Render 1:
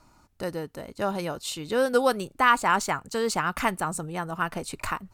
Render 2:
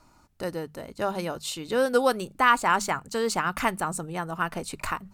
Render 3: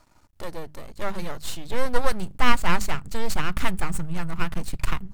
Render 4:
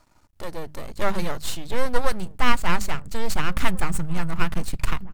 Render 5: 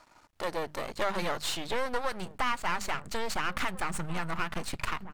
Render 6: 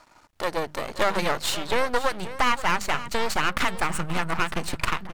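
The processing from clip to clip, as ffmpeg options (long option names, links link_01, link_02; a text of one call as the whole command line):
ffmpeg -i in.wav -af "bandreject=frequency=50:width_type=h:width=6,bandreject=frequency=100:width_type=h:width=6,bandreject=frequency=150:width_type=h:width=6,bandreject=frequency=200:width_type=h:width=6" out.wav
ffmpeg -i in.wav -af "aeval=exprs='max(val(0),0)':channel_layout=same,asubboost=boost=7.5:cutoff=160,volume=2.5dB" out.wav
ffmpeg -i in.wav -filter_complex "[0:a]dynaudnorm=framelen=290:gausssize=5:maxgain=9dB,asplit=2[link_01][link_02];[link_02]adelay=1691,volume=-20dB,highshelf=frequency=4000:gain=-38[link_03];[link_01][link_03]amix=inputs=2:normalize=0,volume=-1dB" out.wav
ffmpeg -i in.wav -filter_complex "[0:a]acompressor=threshold=-19dB:ratio=6,asplit=2[link_01][link_02];[link_02]highpass=frequency=720:poles=1,volume=18dB,asoftclip=type=tanh:threshold=-10dB[link_03];[link_01][link_03]amix=inputs=2:normalize=0,lowpass=frequency=3600:poles=1,volume=-6dB,volume=-6dB" out.wav
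ffmpeg -i in.wav -filter_complex "[0:a]asplit=2[link_01][link_02];[link_02]acrusher=bits=3:mix=0:aa=0.5,volume=-6.5dB[link_03];[link_01][link_03]amix=inputs=2:normalize=0,aecho=1:1:530:0.188,volume=4dB" out.wav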